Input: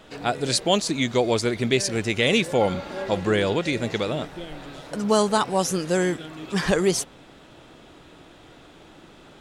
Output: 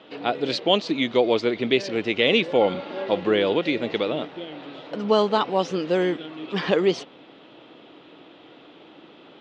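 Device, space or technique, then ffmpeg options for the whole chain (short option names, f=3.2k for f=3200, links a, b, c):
kitchen radio: -af "highpass=210,equalizer=f=300:t=q:w=4:g=4,equalizer=f=480:t=q:w=4:g=3,equalizer=f=1.6k:t=q:w=4:g=-4,equalizer=f=3k:t=q:w=4:g=4,lowpass=f=4.1k:w=0.5412,lowpass=f=4.1k:w=1.3066"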